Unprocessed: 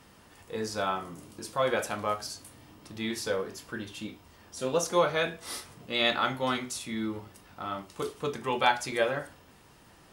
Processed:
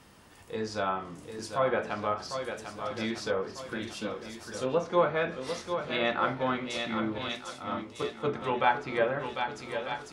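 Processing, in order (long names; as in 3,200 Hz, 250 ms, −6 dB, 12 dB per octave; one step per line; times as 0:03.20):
feedback echo with a long and a short gap by turns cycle 1,247 ms, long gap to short 1.5 to 1, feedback 39%, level −8 dB
treble cut that deepens with the level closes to 2,100 Hz, closed at −25 dBFS
0:07.18–0:08.42: multiband upward and downward expander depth 100%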